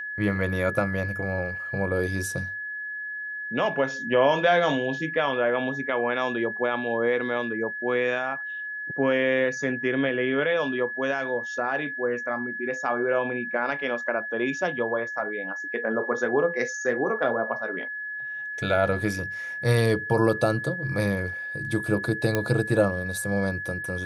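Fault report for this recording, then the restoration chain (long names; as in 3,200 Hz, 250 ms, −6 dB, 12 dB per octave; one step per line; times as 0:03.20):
whistle 1,700 Hz −31 dBFS
0:22.35: click −10 dBFS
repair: click removal
notch filter 1,700 Hz, Q 30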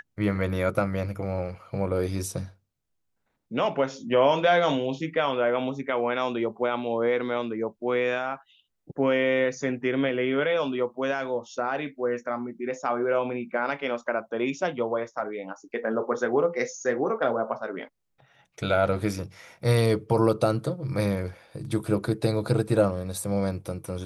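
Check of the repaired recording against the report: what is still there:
none of them is left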